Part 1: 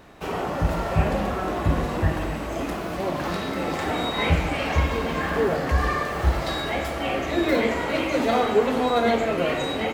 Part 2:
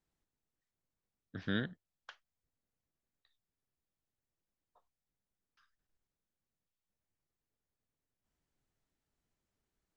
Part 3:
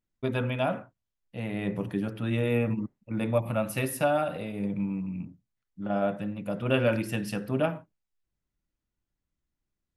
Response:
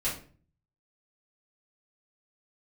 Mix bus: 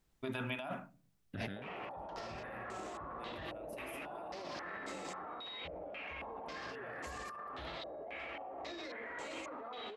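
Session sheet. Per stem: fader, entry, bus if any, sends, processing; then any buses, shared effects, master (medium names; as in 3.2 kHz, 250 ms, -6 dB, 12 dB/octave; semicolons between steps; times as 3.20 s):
-6.0 dB, 1.35 s, bus A, no send, band-stop 1.5 kHz, Q 26; step-sequenced low-pass 3.7 Hz 590–7500 Hz
+0.5 dB, 0.00 s, no bus, no send, peak limiter -30.5 dBFS, peak gain reduction 9.5 dB; bass shelf 71 Hz +7.5 dB
-11.0 dB, 0.00 s, bus A, send -22.5 dB, peaking EQ 500 Hz -14 dB 0.31 oct
bus A: 0.0 dB, tone controls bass -13 dB, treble +1 dB; peak limiter -28.5 dBFS, peak gain reduction 16 dB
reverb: on, RT60 0.45 s, pre-delay 3 ms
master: compressor with a negative ratio -45 dBFS, ratio -1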